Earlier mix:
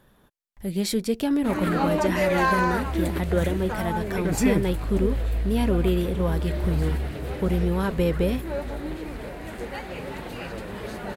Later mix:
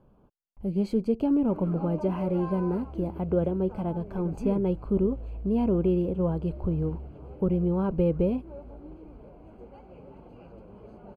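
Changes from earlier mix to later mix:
background -12.0 dB; master: add running mean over 24 samples

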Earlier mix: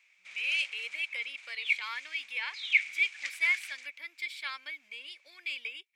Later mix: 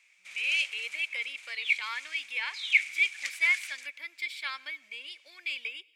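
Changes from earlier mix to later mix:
background: remove air absorption 73 m; reverb: on, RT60 0.75 s

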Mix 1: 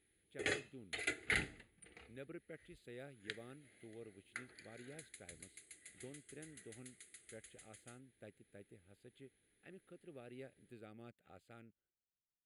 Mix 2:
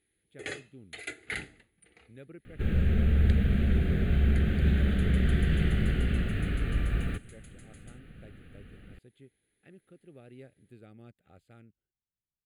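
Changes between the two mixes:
speech: add low shelf 200 Hz +10.5 dB; second sound: unmuted

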